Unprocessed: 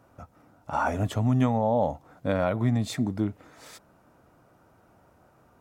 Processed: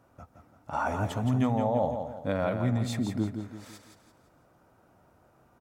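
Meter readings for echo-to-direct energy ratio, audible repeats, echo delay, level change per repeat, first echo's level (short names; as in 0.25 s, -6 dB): -6.0 dB, 4, 0.169 s, -8.0 dB, -7.0 dB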